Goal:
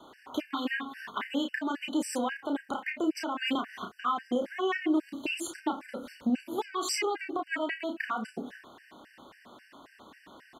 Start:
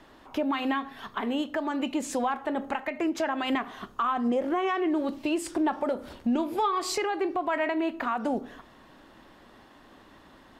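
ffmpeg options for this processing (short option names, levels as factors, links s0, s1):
-filter_complex "[0:a]highpass=f=260:p=1,acrossover=split=390|1300|1800[s0][s1][s2][s3];[s1]acompressor=threshold=0.00891:ratio=6[s4];[s0][s4][s2][s3]amix=inputs=4:normalize=0,asplit=2[s5][s6];[s6]adelay=32,volume=0.562[s7];[s5][s7]amix=inputs=2:normalize=0,afftfilt=real='re*gt(sin(2*PI*3.7*pts/sr)*(1-2*mod(floor(b*sr/1024/1500),2)),0)':imag='im*gt(sin(2*PI*3.7*pts/sr)*(1-2*mod(floor(b*sr/1024/1500),2)),0)':win_size=1024:overlap=0.75,volume=1.41"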